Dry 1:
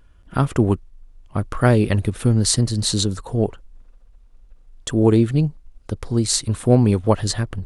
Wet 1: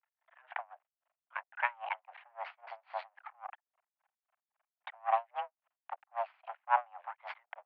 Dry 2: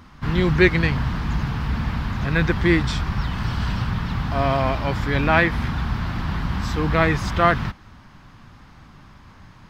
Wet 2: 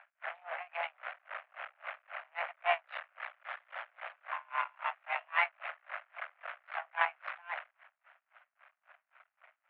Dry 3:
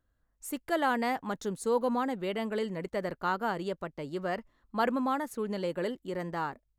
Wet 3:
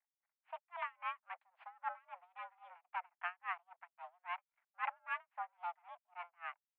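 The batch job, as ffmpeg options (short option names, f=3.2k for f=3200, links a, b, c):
-af "aeval=exprs='max(val(0),0)':c=same,highpass=f=360:t=q:w=0.5412,highpass=f=360:t=q:w=1.307,lowpass=f=2.4k:t=q:w=0.5176,lowpass=f=2.4k:t=q:w=0.7071,lowpass=f=2.4k:t=q:w=1.932,afreqshift=350,aeval=exprs='val(0)*pow(10,-33*(0.5-0.5*cos(2*PI*3.7*n/s))/20)':c=same,volume=-1.5dB"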